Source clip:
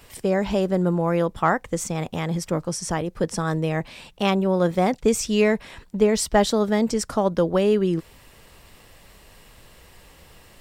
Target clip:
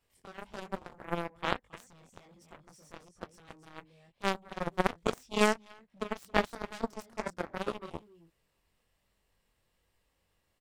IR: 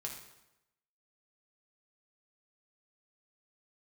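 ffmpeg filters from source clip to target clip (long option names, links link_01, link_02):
-af "flanger=delay=20:depth=4:speed=1.2,aecho=1:1:276:0.376,aeval=exprs='0.376*(cos(1*acos(clip(val(0)/0.376,-1,1)))-cos(1*PI/2))+0.133*(cos(3*acos(clip(val(0)/0.376,-1,1)))-cos(3*PI/2))':channel_layout=same"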